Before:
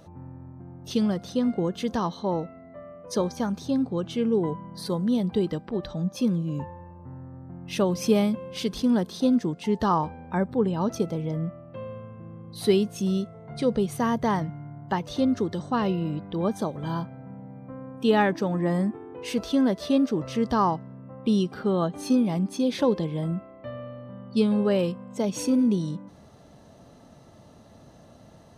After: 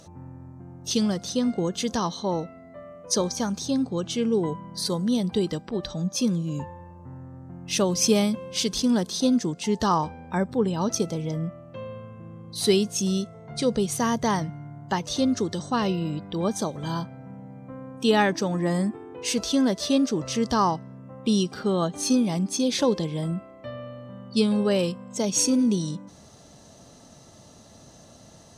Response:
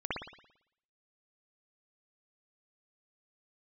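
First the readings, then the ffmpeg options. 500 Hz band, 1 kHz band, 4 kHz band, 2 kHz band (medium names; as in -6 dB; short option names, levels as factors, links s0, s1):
0.0 dB, +0.5 dB, +7.5 dB, +2.5 dB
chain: -af "equalizer=f=6700:t=o:w=1.6:g=14"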